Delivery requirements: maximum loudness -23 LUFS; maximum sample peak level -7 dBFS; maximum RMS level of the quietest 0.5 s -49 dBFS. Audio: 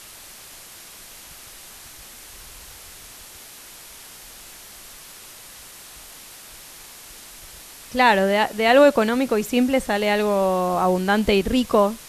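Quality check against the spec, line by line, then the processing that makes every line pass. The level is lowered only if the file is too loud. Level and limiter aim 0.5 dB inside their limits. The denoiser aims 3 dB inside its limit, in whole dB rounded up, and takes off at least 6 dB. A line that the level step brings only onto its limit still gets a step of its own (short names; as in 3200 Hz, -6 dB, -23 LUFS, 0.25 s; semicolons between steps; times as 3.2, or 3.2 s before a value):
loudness -19.0 LUFS: fail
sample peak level -2.5 dBFS: fail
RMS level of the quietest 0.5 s -43 dBFS: fail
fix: denoiser 6 dB, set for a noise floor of -43 dBFS; gain -4.5 dB; limiter -7.5 dBFS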